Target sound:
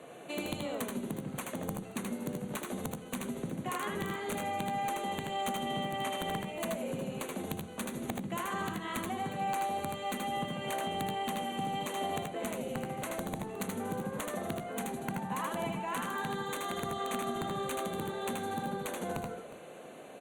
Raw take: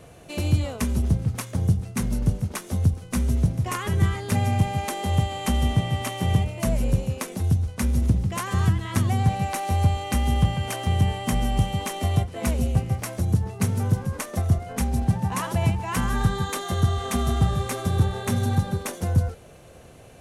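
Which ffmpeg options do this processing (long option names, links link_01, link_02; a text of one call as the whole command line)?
ffmpeg -i in.wav -af "highpass=frequency=200:width=0.5412,highpass=frequency=200:width=1.3066,highshelf=frequency=3900:gain=-6.5,bandreject=frequency=60:width_type=h:width=6,bandreject=frequency=120:width_type=h:width=6,bandreject=frequency=180:width_type=h:width=6,bandreject=frequency=240:width_type=h:width=6,bandreject=frequency=300:width_type=h:width=6,bandreject=frequency=360:width_type=h:width=6,acompressor=threshold=-35dB:ratio=4,aeval=exprs='(mod(20*val(0)+1,2)-1)/20':channel_layout=same,asuperstop=centerf=5200:order=4:qfactor=2.7,aecho=1:1:79|93|361:0.668|0.237|0.141" -ar 48000 -c:a libopus -b:a 64k out.opus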